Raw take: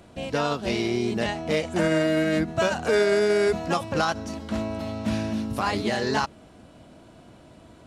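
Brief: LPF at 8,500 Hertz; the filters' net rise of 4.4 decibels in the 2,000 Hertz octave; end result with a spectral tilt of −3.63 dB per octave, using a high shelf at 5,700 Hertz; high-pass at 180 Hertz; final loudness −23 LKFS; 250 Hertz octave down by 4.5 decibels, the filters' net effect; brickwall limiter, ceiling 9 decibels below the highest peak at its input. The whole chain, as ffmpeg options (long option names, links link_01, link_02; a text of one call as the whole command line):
ffmpeg -i in.wav -af "highpass=180,lowpass=8500,equalizer=frequency=250:width_type=o:gain=-5,equalizer=frequency=2000:width_type=o:gain=5,highshelf=frequency=5700:gain=7,volume=4.5dB,alimiter=limit=-11.5dB:level=0:latency=1" out.wav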